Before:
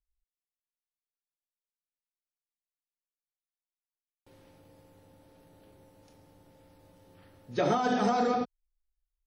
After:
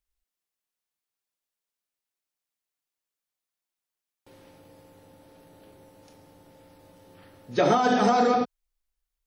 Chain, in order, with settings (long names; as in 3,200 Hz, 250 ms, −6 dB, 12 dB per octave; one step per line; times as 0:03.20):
low-shelf EQ 120 Hz −7.5 dB
level +6.5 dB